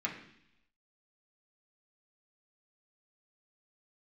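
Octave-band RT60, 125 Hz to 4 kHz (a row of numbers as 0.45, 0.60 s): 0.90, 0.90, 0.70, 0.70, 0.90, 1.0 s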